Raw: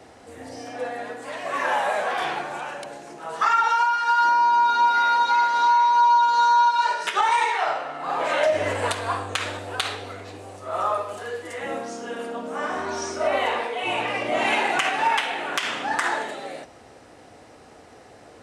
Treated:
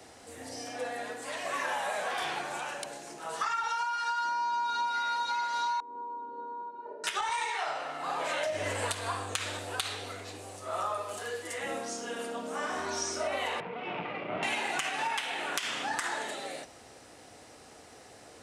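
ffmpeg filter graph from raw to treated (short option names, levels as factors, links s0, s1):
-filter_complex "[0:a]asettb=1/sr,asplit=3[s0][s1][s2];[s0]atrim=end=5.804[s3];[s1]atrim=start=5.8:end=7.04,asetpts=PTS-STARTPTS,afade=t=in:d=0.004:c=qsin,afade=t=out:st=1.236:d=0.004:c=qsin,asuperpass=centerf=330:order=4:qfactor=1.2,lowshelf=f=380:g=8.5[s4];[s2]atrim=start=7.036[s5];[s3][s4]acrossfade=d=0.004:c1=hsin:c2=qsin[s6];[s6][s5]acrossfade=d=0.004:c1=qsin:c2=hsin,asettb=1/sr,asplit=3[s7][s8][s9];[s7]atrim=end=13.604[s10];[s8]atrim=start=13.6:end=14.43,asetpts=PTS-STARTPTS,afade=t=in:d=0.004:c=qsin,afade=t=out:st=0.826:d=0.004:c=qsin,aeval=exprs='max(val(0),0)':c=same,highpass=f=120:w=0.5412,highpass=f=120:w=1.3066,equalizer=f=180:t=q:w=4:g=9,equalizer=f=390:t=q:w=4:g=4,equalizer=f=1700:t=q:w=4:g=-8,lowpass=f=2300:w=0.5412,lowpass=f=2300:w=1.3066[s11];[s9]atrim=start=14.426[s12];[s10][s11]acrossfade=d=0.004:c1=hsin:c2=qsin[s13];[s13][s12]acrossfade=d=0.004:c1=qsin:c2=hsin,highshelf=f=3300:g=11.5,acrossover=split=190[s14][s15];[s15]acompressor=threshold=0.0631:ratio=4[s16];[s14][s16]amix=inputs=2:normalize=0,volume=0.501"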